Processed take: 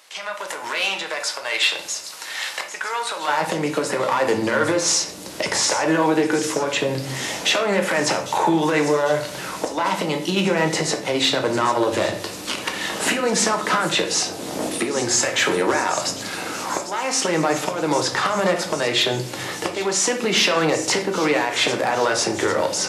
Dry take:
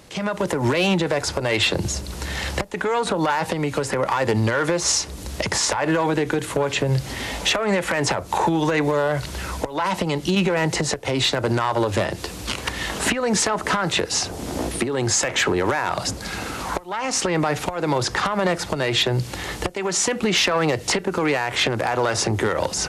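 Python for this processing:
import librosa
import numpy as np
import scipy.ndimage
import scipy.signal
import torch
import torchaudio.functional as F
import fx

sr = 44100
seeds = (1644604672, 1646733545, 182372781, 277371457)

y = fx.highpass(x, sr, hz=fx.steps((0.0, 1000.0), (3.28, 220.0)), slope=12)
y = fx.echo_wet_highpass(y, sr, ms=799, feedback_pct=70, hz=5200.0, wet_db=-9.5)
y = fx.room_shoebox(y, sr, seeds[0], volume_m3=84.0, walls='mixed', distance_m=0.53)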